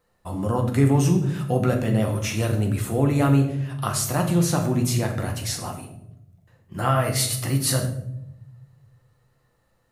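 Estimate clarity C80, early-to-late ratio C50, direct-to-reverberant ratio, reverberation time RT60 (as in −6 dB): 10.5 dB, 8.0 dB, 2.0 dB, 0.80 s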